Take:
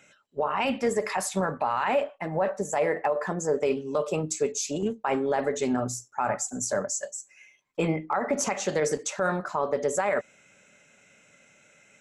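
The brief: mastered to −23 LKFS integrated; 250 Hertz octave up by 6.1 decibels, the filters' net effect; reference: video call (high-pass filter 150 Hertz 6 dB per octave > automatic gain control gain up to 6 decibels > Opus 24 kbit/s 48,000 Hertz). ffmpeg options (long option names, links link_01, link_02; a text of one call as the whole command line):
ffmpeg -i in.wav -af "highpass=frequency=150:poles=1,equalizer=frequency=250:width_type=o:gain=9,dynaudnorm=maxgain=6dB,volume=3.5dB" -ar 48000 -c:a libopus -b:a 24k out.opus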